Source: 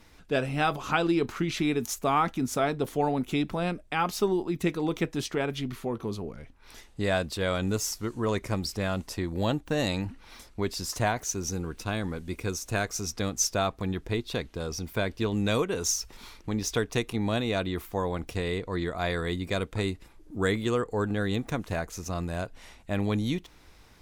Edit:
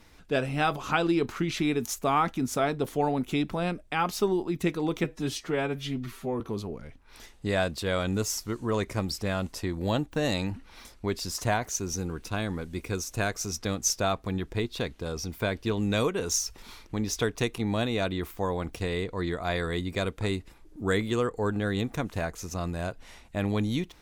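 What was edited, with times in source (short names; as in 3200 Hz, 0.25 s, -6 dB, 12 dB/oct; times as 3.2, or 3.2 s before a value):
5.04–5.95 stretch 1.5×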